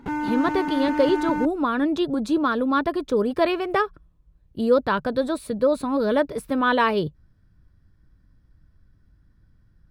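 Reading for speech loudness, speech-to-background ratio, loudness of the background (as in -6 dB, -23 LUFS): -23.0 LUFS, 4.5 dB, -27.5 LUFS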